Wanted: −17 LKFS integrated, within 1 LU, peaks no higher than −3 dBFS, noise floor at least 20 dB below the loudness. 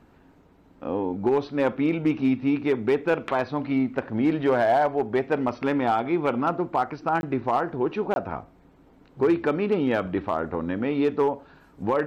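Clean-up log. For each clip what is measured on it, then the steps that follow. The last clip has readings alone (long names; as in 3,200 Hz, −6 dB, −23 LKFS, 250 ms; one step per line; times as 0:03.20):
share of clipped samples 0.6%; peaks flattened at −14.5 dBFS; number of dropouts 2; longest dropout 21 ms; integrated loudness −25.0 LKFS; sample peak −14.5 dBFS; target loudness −17.0 LKFS
→ clipped peaks rebuilt −14.5 dBFS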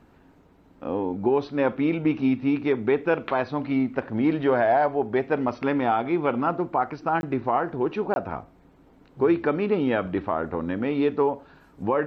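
share of clipped samples 0.0%; number of dropouts 2; longest dropout 21 ms
→ repair the gap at 0:07.21/0:08.14, 21 ms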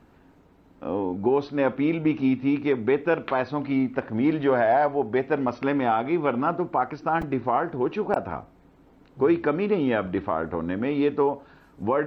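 number of dropouts 0; integrated loudness −24.5 LKFS; sample peak −8.0 dBFS; target loudness −17.0 LKFS
→ level +7.5 dB
brickwall limiter −3 dBFS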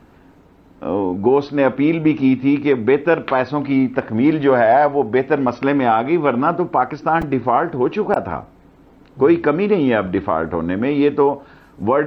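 integrated loudness −17.5 LKFS; sample peak −3.0 dBFS; background noise floor −48 dBFS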